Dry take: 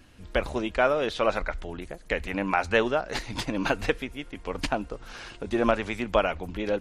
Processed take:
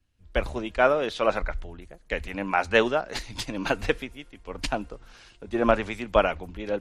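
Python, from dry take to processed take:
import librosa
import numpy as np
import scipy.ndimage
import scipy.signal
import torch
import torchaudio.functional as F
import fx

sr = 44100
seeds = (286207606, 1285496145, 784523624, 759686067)

y = fx.band_widen(x, sr, depth_pct=70)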